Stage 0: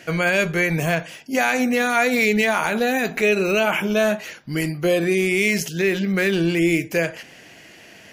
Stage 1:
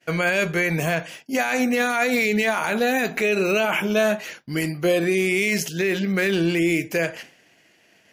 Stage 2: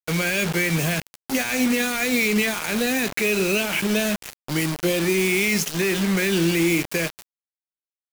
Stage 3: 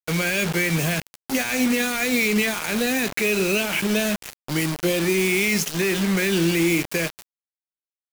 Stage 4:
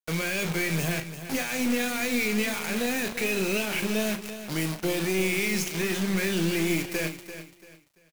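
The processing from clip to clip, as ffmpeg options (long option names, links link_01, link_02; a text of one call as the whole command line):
ffmpeg -i in.wav -af "agate=range=-33dB:threshold=-36dB:ratio=3:detection=peak,lowshelf=frequency=95:gain=-8,alimiter=limit=-11.5dB:level=0:latency=1:release=21" out.wav
ffmpeg -i in.wav -filter_complex "[0:a]equalizer=frequency=750:width_type=o:width=2.5:gain=-3,acrossover=split=160|460|1800[link_01][link_02][link_03][link_04];[link_03]acompressor=threshold=-36dB:ratio=10[link_05];[link_01][link_02][link_05][link_04]amix=inputs=4:normalize=0,acrusher=bits=4:mix=0:aa=0.000001,volume=2.5dB" out.wav
ffmpeg -i in.wav -af anull out.wav
ffmpeg -i in.wav -filter_complex "[0:a]asplit=2[link_01][link_02];[link_02]adelay=37,volume=-10dB[link_03];[link_01][link_03]amix=inputs=2:normalize=0,aeval=exprs='(tanh(5.01*val(0)+0.45)-tanh(0.45))/5.01':channel_layout=same,aecho=1:1:340|680|1020:0.266|0.0798|0.0239,volume=-4dB" out.wav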